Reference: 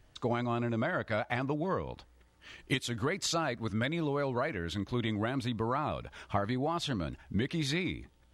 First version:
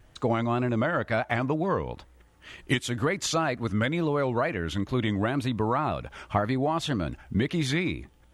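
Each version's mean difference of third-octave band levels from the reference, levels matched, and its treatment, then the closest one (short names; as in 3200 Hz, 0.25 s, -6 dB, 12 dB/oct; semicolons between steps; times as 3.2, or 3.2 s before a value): 2.0 dB: bell 4500 Hz -5 dB 0.76 oct; wow and flutter 83 cents; gain +6 dB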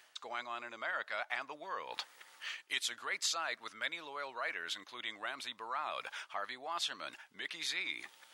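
11.0 dB: reverse; compressor 10:1, threshold -45 dBFS, peak gain reduction 19.5 dB; reverse; HPF 1100 Hz 12 dB/oct; gain +15 dB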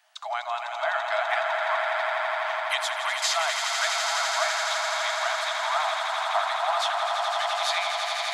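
21.5 dB: Chebyshev high-pass 630 Hz, order 10; on a send: swelling echo 84 ms, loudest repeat 8, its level -7 dB; on the sum: gain +7 dB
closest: first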